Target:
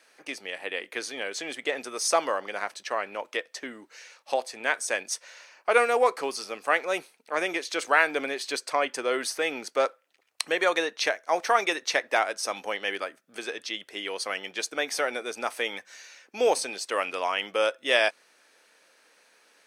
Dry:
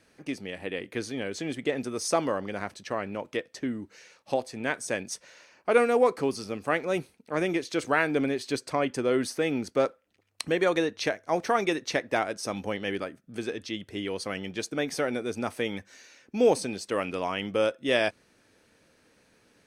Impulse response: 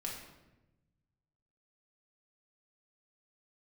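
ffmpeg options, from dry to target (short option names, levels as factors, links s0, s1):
-af "highpass=660,volume=1.78"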